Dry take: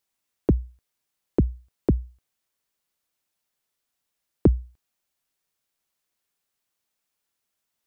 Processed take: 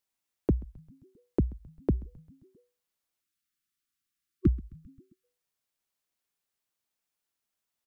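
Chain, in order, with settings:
echo with shifted repeats 132 ms, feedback 62%, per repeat −110 Hz, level −22 dB
time-frequency box erased 0:03.21–0:05.24, 380–1,100 Hz
level −5.5 dB

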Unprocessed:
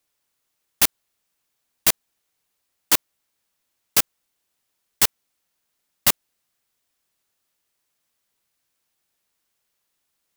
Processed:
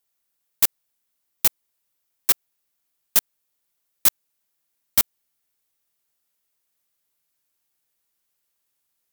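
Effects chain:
gliding playback speed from 132% → 95%
high-shelf EQ 11,000 Hz +11 dB
level −5 dB

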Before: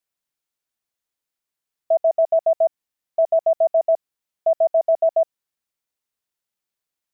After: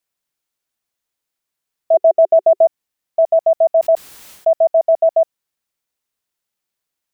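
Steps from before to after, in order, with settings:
0:01.94–0:02.66: parametric band 380 Hz +14.5 dB 0.59 octaves
0:03.80–0:04.53: level that may fall only so fast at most 78 dB per second
level +4.5 dB

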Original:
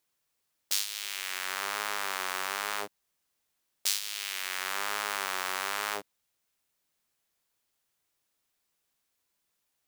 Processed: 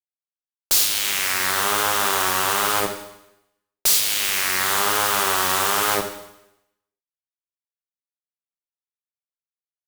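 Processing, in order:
fuzz pedal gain 37 dB, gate −46 dBFS
four-comb reverb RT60 0.85 s, combs from 29 ms, DRR 6 dB

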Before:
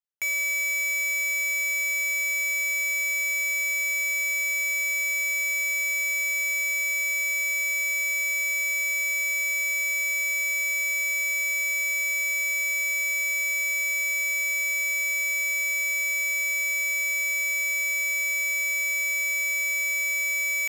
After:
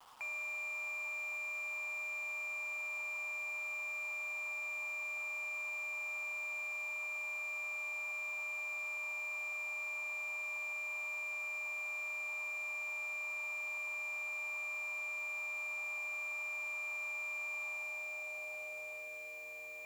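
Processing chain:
low-pass filter 7,400 Hz 24 dB per octave
noise in a band 700–1,300 Hz −59 dBFS
band-pass filter sweep 930 Hz → 440 Hz, 0:18.31–0:20.23
bit-depth reduction 10 bits, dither none
wrong playback speed 24 fps film run at 25 fps

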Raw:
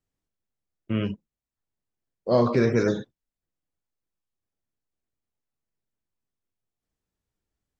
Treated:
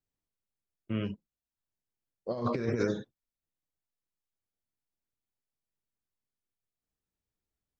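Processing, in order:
0:02.31–0:02.91: compressor whose output falls as the input rises −23 dBFS, ratio −0.5
level −6.5 dB

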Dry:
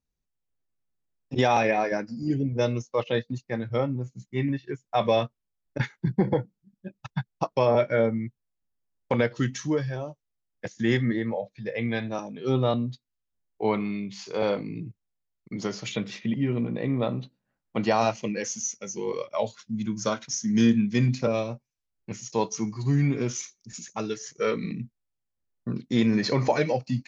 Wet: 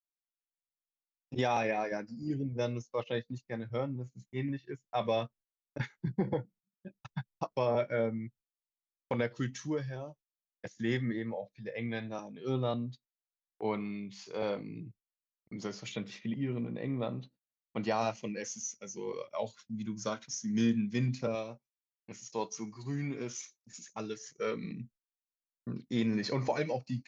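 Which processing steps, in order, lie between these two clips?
noise gate −49 dBFS, range −24 dB
0:21.35–0:23.93: low-shelf EQ 150 Hz −11.5 dB
level −8.5 dB

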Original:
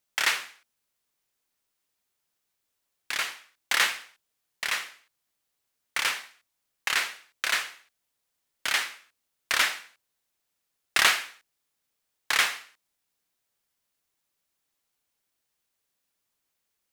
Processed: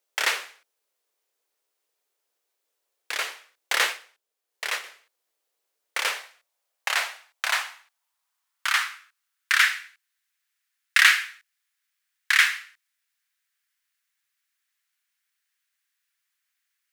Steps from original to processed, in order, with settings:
0:03.89–0:04.84: transient designer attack −1 dB, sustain −5 dB
high-pass filter sweep 450 Hz → 1,700 Hz, 0:05.86–0:09.81

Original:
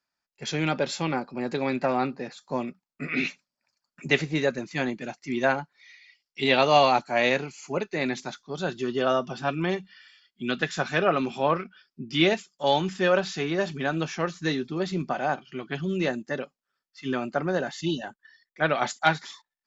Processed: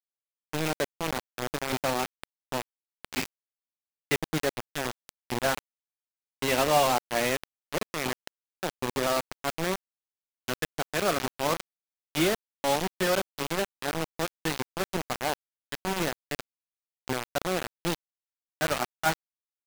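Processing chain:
low-pass filter 1,900 Hz 6 dB per octave
hum removal 271.9 Hz, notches 16
bit reduction 4 bits
level −3.5 dB

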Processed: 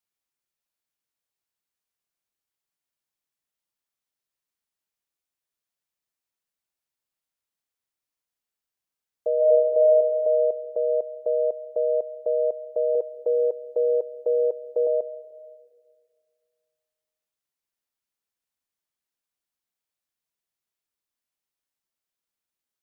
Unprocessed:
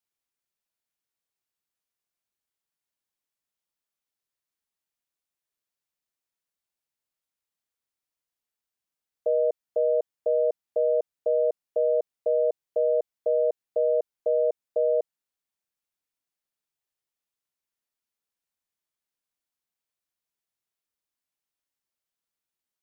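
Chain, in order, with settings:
0:09.36–0:09.88: thrown reverb, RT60 1.8 s, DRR −2 dB
0:12.95–0:14.87: comb filter 2.3 ms, depth 67%
comb and all-pass reverb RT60 2 s, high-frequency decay 1×, pre-delay 90 ms, DRR 17 dB

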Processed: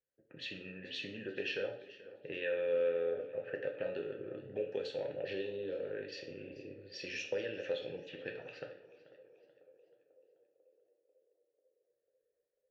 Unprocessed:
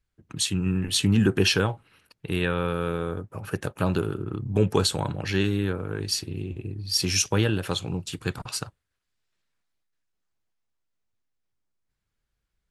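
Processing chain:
low-pass filter 5,900 Hz 24 dB per octave
low-pass that shuts in the quiet parts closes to 1,200 Hz, open at −19 dBFS
0:05.21–0:05.75: octave-band graphic EQ 125/500/2,000/4,000 Hz +4/+5/−11/+6 dB
downward compressor, threshold −27 dBFS, peak gain reduction 12 dB
formant filter e
feedback echo with a band-pass in the loop 493 ms, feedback 69%, band-pass 500 Hz, level −18 dB
convolution reverb RT60 0.50 s, pre-delay 7 ms, DRR 2.5 dB
feedback echo with a swinging delay time 434 ms, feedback 42%, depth 68 cents, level −19 dB
level +4.5 dB

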